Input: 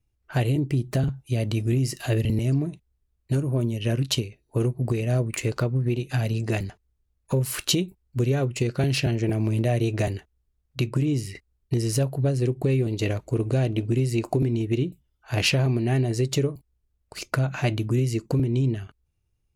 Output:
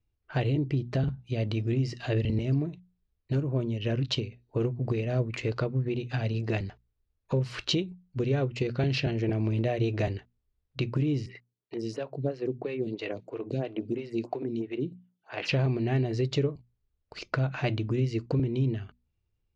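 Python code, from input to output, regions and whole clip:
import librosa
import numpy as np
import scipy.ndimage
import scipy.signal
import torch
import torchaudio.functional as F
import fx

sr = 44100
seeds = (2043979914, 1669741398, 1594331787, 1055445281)

y = fx.chain(x, sr, fx.highpass(hz=140.0, slope=24),
    fx.stagger_phaser(hz=3.0), at=(11.26, 15.49))
y = scipy.signal.sosfilt(scipy.signal.butter(4, 4900.0, 'lowpass', fs=sr, output='sos'), y)
y = fx.peak_eq(y, sr, hz=470.0, db=3.0, octaves=0.21)
y = fx.hum_notches(y, sr, base_hz=60, count=4)
y = y * librosa.db_to_amplitude(-3.5)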